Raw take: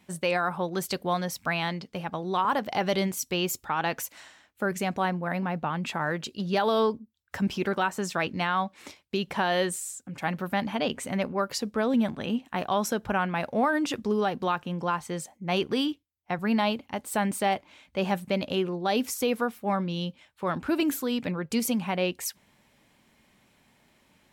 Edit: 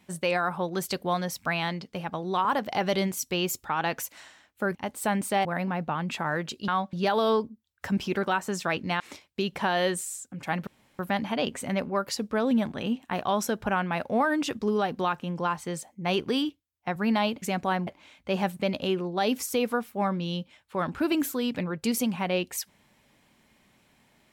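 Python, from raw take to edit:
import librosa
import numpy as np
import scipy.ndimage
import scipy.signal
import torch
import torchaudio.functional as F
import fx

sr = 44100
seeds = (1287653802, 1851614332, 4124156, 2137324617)

y = fx.edit(x, sr, fx.swap(start_s=4.75, length_s=0.45, other_s=16.85, other_length_s=0.7),
    fx.move(start_s=8.5, length_s=0.25, to_s=6.43),
    fx.insert_room_tone(at_s=10.42, length_s=0.32), tone=tone)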